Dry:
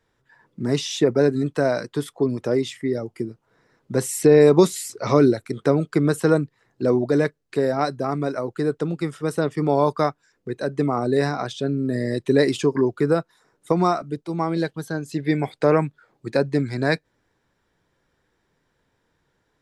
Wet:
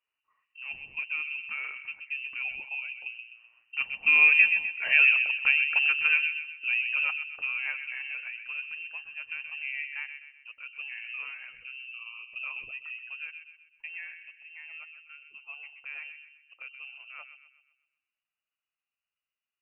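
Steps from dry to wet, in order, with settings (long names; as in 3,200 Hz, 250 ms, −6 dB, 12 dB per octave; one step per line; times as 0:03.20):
source passing by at 0:05.20, 16 m/s, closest 18 metres
delay with a low-pass on its return 127 ms, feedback 45%, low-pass 1,000 Hz, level −6 dB
voice inversion scrambler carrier 2,900 Hz
level −5 dB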